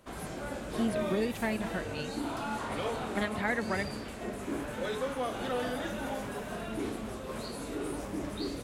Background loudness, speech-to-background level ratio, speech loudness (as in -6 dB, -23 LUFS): -36.5 LUFS, 2.0 dB, -34.5 LUFS